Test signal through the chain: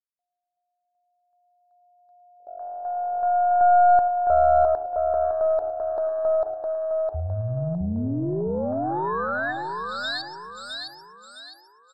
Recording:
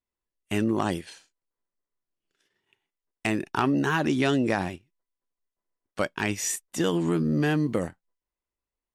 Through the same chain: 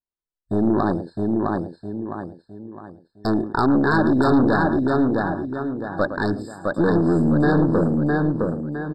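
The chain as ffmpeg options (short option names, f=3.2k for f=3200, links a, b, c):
-filter_complex "[0:a]lowpass=5.5k,asplit=2[a][b];[b]aecho=0:1:111:0.251[c];[a][c]amix=inputs=2:normalize=0,afwtdn=0.02,asplit=2[d][e];[e]aecho=0:1:660|1320|1980|2640|3300:0.668|0.247|0.0915|0.0339|0.0125[f];[d][f]amix=inputs=2:normalize=0,aeval=exprs='0.355*(cos(1*acos(clip(val(0)/0.355,-1,1)))-cos(1*PI/2))+0.112*(cos(5*acos(clip(val(0)/0.355,-1,1)))-cos(5*PI/2))+0.0316*(cos(8*acos(clip(val(0)/0.355,-1,1)))-cos(8*PI/2))':c=same,afftfilt=real='re*eq(mod(floor(b*sr/1024/1800),2),0)':imag='im*eq(mod(floor(b*sr/1024/1800),2),0)':win_size=1024:overlap=0.75"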